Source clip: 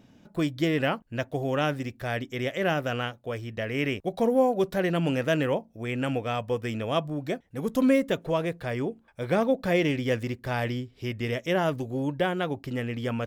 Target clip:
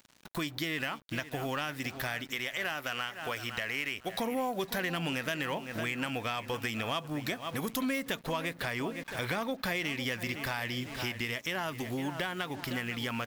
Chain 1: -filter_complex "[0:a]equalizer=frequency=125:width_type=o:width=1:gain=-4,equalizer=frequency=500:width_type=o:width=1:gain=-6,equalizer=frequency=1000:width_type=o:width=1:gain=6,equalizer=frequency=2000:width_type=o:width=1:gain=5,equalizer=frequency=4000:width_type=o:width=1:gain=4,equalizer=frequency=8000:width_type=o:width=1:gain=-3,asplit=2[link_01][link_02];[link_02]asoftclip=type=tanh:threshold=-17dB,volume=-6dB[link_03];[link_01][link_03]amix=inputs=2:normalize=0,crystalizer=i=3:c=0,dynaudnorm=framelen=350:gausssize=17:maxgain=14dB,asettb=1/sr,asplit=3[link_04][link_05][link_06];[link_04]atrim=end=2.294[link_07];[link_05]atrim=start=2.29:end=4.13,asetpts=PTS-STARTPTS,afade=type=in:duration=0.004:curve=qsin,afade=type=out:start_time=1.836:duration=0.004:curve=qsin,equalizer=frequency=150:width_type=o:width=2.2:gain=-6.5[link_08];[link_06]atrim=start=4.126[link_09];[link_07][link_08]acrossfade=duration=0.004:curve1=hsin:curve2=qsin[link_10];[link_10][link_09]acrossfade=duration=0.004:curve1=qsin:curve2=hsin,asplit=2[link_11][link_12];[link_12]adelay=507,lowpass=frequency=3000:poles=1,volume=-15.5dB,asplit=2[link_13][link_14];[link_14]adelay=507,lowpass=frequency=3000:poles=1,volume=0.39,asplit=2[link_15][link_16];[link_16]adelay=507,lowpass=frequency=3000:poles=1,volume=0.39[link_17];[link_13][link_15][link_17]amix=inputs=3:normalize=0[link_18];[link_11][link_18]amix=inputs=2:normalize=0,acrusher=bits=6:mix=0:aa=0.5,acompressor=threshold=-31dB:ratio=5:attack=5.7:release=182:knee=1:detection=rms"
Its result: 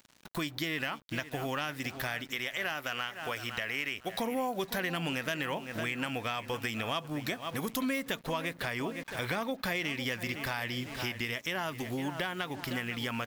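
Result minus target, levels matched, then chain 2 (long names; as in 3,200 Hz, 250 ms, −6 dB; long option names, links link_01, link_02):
soft clipping: distortion −9 dB
-filter_complex "[0:a]equalizer=frequency=125:width_type=o:width=1:gain=-4,equalizer=frequency=500:width_type=o:width=1:gain=-6,equalizer=frequency=1000:width_type=o:width=1:gain=6,equalizer=frequency=2000:width_type=o:width=1:gain=5,equalizer=frequency=4000:width_type=o:width=1:gain=4,equalizer=frequency=8000:width_type=o:width=1:gain=-3,asplit=2[link_01][link_02];[link_02]asoftclip=type=tanh:threshold=-26.5dB,volume=-6dB[link_03];[link_01][link_03]amix=inputs=2:normalize=0,crystalizer=i=3:c=0,dynaudnorm=framelen=350:gausssize=17:maxgain=14dB,asettb=1/sr,asplit=3[link_04][link_05][link_06];[link_04]atrim=end=2.294[link_07];[link_05]atrim=start=2.29:end=4.13,asetpts=PTS-STARTPTS,afade=type=in:duration=0.004:curve=qsin,afade=type=out:start_time=1.836:duration=0.004:curve=qsin,equalizer=frequency=150:width_type=o:width=2.2:gain=-6.5[link_08];[link_06]atrim=start=4.126[link_09];[link_07][link_08]acrossfade=duration=0.004:curve1=hsin:curve2=qsin[link_10];[link_10][link_09]acrossfade=duration=0.004:curve1=qsin:curve2=hsin,asplit=2[link_11][link_12];[link_12]adelay=507,lowpass=frequency=3000:poles=1,volume=-15.5dB,asplit=2[link_13][link_14];[link_14]adelay=507,lowpass=frequency=3000:poles=1,volume=0.39,asplit=2[link_15][link_16];[link_16]adelay=507,lowpass=frequency=3000:poles=1,volume=0.39[link_17];[link_13][link_15][link_17]amix=inputs=3:normalize=0[link_18];[link_11][link_18]amix=inputs=2:normalize=0,acrusher=bits=6:mix=0:aa=0.5,acompressor=threshold=-31dB:ratio=5:attack=5.7:release=182:knee=1:detection=rms"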